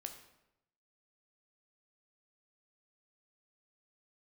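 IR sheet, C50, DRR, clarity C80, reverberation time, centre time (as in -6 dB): 9.0 dB, 5.0 dB, 11.0 dB, 0.90 s, 17 ms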